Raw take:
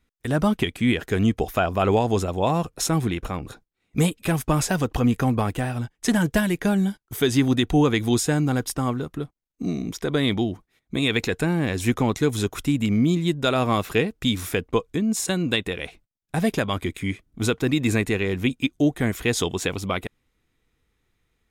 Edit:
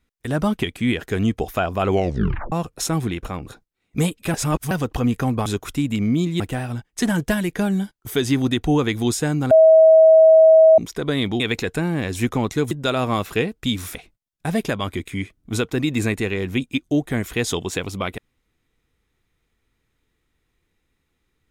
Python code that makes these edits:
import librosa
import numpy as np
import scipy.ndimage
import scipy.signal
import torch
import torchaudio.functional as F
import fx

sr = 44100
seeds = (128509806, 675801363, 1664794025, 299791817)

y = fx.edit(x, sr, fx.tape_stop(start_s=1.9, length_s=0.62),
    fx.reverse_span(start_s=4.34, length_s=0.37),
    fx.bleep(start_s=8.57, length_s=1.27, hz=641.0, db=-7.0),
    fx.cut(start_s=10.46, length_s=0.59),
    fx.move(start_s=12.36, length_s=0.94, to_s=5.46),
    fx.cut(start_s=14.54, length_s=1.3), tone=tone)